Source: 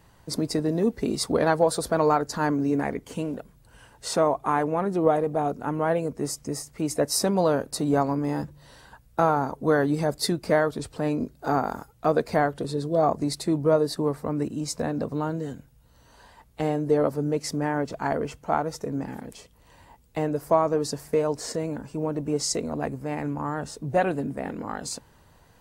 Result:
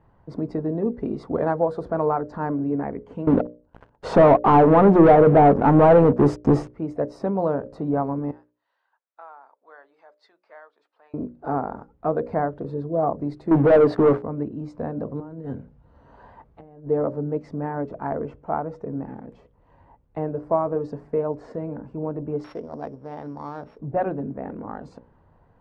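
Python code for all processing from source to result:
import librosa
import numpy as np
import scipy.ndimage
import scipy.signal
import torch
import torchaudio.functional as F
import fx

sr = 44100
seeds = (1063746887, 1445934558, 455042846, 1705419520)

y = fx.chain(x, sr, fx.peak_eq(hz=2000.0, db=-5.5, octaves=0.49),
    fx.leveller(passes=5), at=(3.27, 6.7))
y = fx.chain(y, sr, fx.bandpass_edges(low_hz=630.0, high_hz=3800.0),
    fx.differentiator(), at=(8.31, 11.14))
y = fx.chain(y, sr, fx.highpass(hz=270.0, slope=6),
    fx.high_shelf(hz=4000.0, db=-6.0),
    fx.leveller(passes=5), at=(13.51, 14.23))
y = fx.chain(y, sr, fx.highpass(hz=43.0, slope=12),
    fx.over_compress(threshold_db=-34.0, ratio=-0.5), at=(15.2, 16.9))
y = fx.chain(y, sr, fx.sample_sort(block=8),
    fx.low_shelf(hz=310.0, db=-9.5), at=(22.44, 23.79))
y = scipy.signal.sosfilt(scipy.signal.butter(2, 1100.0, 'lowpass', fs=sr, output='sos'), y)
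y = fx.hum_notches(y, sr, base_hz=60, count=10)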